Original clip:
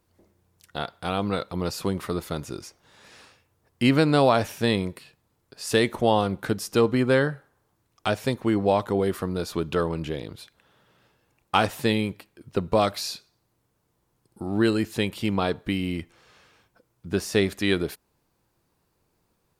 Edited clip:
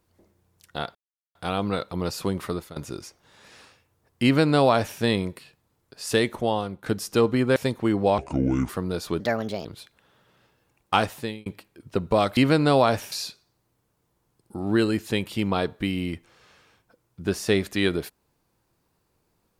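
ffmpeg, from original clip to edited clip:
ffmpeg -i in.wav -filter_complex "[0:a]asplit=12[link_01][link_02][link_03][link_04][link_05][link_06][link_07][link_08][link_09][link_10][link_11][link_12];[link_01]atrim=end=0.95,asetpts=PTS-STARTPTS,afade=type=out:start_time=0.946:duration=0.004:curve=hsin,apad=pad_dur=0.4[link_13];[link_02]atrim=start=0.95:end=2.36,asetpts=PTS-STARTPTS,afade=type=in:duration=0.004:curve=hsin,afade=type=out:start_time=1.15:duration=0.26:silence=0.149624[link_14];[link_03]atrim=start=2.36:end=6.46,asetpts=PTS-STARTPTS,afade=type=in:duration=0.004:curve=hsin:silence=0.149624,afade=type=out:start_time=3.33:duration=0.77:silence=0.316228[link_15];[link_04]atrim=start=6.46:end=7.162,asetpts=PTS-STARTPTS,afade=type=in:duration=0.004:curve=hsin:silence=0.316228[link_16];[link_05]atrim=start=8.178:end=8.804[link_17];[link_06]atrim=start=8.8:end=9.14,asetpts=PTS-STARTPTS,asetrate=29547,aresample=44100,atrim=end_sample=22379,asetpts=PTS-STARTPTS[link_18];[link_07]atrim=start=9.136:end=9.654[link_19];[link_08]atrim=start=9.65:end=10.26,asetpts=PTS-STARTPTS,asetrate=59535,aresample=44100[link_20];[link_09]atrim=start=10.256:end=12.07,asetpts=PTS-STARTPTS,afade=type=out:start_time=1.324:duration=0.49[link_21];[link_10]atrim=start=12.07:end=12.982,asetpts=PTS-STARTPTS,afade=type=in:duration=0.004:curve=hsin[link_22];[link_11]atrim=start=3.838:end=4.592[link_23];[link_12]atrim=start=12.978[link_24];[link_13][link_14][link_15][link_16]concat=n=4:v=0:a=1[link_25];[link_25][link_17]acrossfade=duration=0.004:curve1=hsin:curve2=hsin[link_26];[link_26][link_18]acrossfade=duration=0.004:curve1=hsin:curve2=hsin[link_27];[link_27][link_19]acrossfade=duration=0.004:curve1=hsin:curve2=hsin[link_28];[link_28][link_20]acrossfade=duration=0.004:curve1=hsin:curve2=hsin[link_29];[link_21][link_22]concat=n=2:v=0:a=1[link_30];[link_29][link_30]acrossfade=duration=0.004:curve1=hsin:curve2=hsin[link_31];[link_31][link_23]acrossfade=duration=0.004:curve1=hsin:curve2=hsin[link_32];[link_32][link_24]acrossfade=duration=0.004:curve1=hsin:curve2=hsin" out.wav

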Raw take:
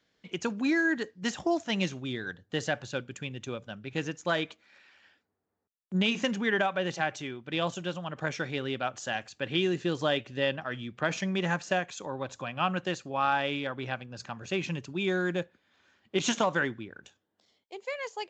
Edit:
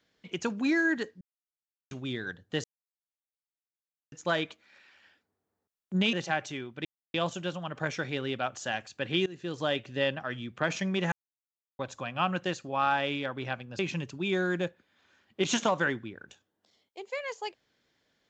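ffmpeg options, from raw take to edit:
ffmpeg -i in.wav -filter_complex "[0:a]asplit=11[link_01][link_02][link_03][link_04][link_05][link_06][link_07][link_08][link_09][link_10][link_11];[link_01]atrim=end=1.21,asetpts=PTS-STARTPTS,afade=type=out:start_time=1.206:duration=0.004:curve=hsin[link_12];[link_02]atrim=start=1.21:end=1.91,asetpts=PTS-STARTPTS,volume=0[link_13];[link_03]atrim=start=1.91:end=2.64,asetpts=PTS-STARTPTS,afade=type=in:duration=0.004:curve=hsin,afade=type=out:start_time=0.726:duration=0.004:curve=hsin[link_14];[link_04]atrim=start=2.64:end=4.12,asetpts=PTS-STARTPTS,volume=0[link_15];[link_05]atrim=start=4.12:end=6.132,asetpts=PTS-STARTPTS,afade=type=in:duration=0.004:curve=hsin[link_16];[link_06]atrim=start=6.828:end=7.55,asetpts=PTS-STARTPTS,afade=type=out:start_time=0.718:duration=0.004:curve=hsin,apad=pad_dur=0.29[link_17];[link_07]atrim=start=7.55:end=9.67,asetpts=PTS-STARTPTS,afade=type=in:duration=0.004:curve=hsin,afade=type=out:start_time=2.116:duration=0.004:curve=hsin:silence=0.0944061[link_18];[link_08]atrim=start=9.67:end=11.53,asetpts=PTS-STARTPTS,afade=type=in:duration=0.75:curve=qsin:silence=0.0944061,afade=type=out:start_time=1.856:duration=0.004:curve=hsin[link_19];[link_09]atrim=start=11.53:end=12.2,asetpts=PTS-STARTPTS,volume=0[link_20];[link_10]atrim=start=12.2:end=14.202,asetpts=PTS-STARTPTS,afade=type=in:duration=0.004:curve=hsin[link_21];[link_11]atrim=start=14.538[link_22];[link_12][link_13][link_14][link_15][link_16]concat=n=5:v=0:a=1[link_23];[link_17][link_18][link_19][link_20][link_21]concat=n=5:v=0:a=1[link_24];[link_23][link_24]acrossfade=duration=0.004:curve1=hsin:curve2=hsin[link_25];[link_25][link_22]acrossfade=duration=0.004:curve1=hsin:curve2=hsin" out.wav

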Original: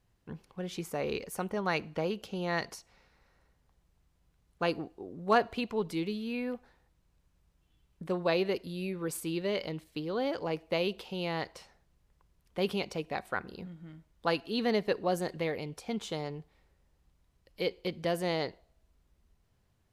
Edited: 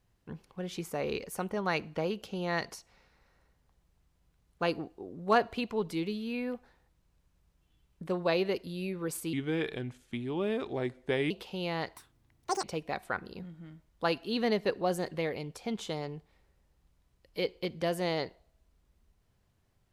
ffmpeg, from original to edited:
ffmpeg -i in.wav -filter_complex "[0:a]asplit=5[link_01][link_02][link_03][link_04][link_05];[link_01]atrim=end=9.334[link_06];[link_02]atrim=start=9.33:end=10.89,asetpts=PTS-STARTPTS,asetrate=34839,aresample=44100[link_07];[link_03]atrim=start=10.886:end=11.554[link_08];[link_04]atrim=start=11.55:end=12.86,asetpts=PTS-STARTPTS,asetrate=85995,aresample=44100,atrim=end_sample=29626,asetpts=PTS-STARTPTS[link_09];[link_05]atrim=start=12.856[link_10];[link_06][link_07]acrossfade=duration=0.004:curve1=hsin:curve2=hsin[link_11];[link_11][link_08]acrossfade=duration=0.004:curve1=hsin:curve2=hsin[link_12];[link_12][link_09]acrossfade=duration=0.004:curve1=hsin:curve2=hsin[link_13];[link_13][link_10]acrossfade=duration=0.004:curve1=hsin:curve2=hsin" out.wav

